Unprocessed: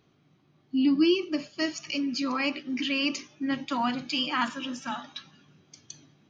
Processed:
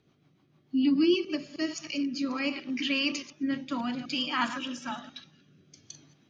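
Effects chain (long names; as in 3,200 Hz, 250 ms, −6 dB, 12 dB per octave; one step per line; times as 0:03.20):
delay that plays each chunk backwards 104 ms, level −11 dB
rotating-speaker cabinet horn 6.7 Hz, later 0.6 Hz, at 0:01.14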